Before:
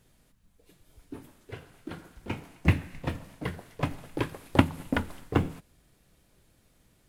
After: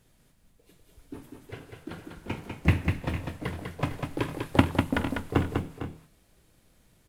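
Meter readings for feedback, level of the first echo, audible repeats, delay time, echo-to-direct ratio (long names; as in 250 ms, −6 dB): repeats not evenly spaced, −15.0 dB, 3, 47 ms, −3.5 dB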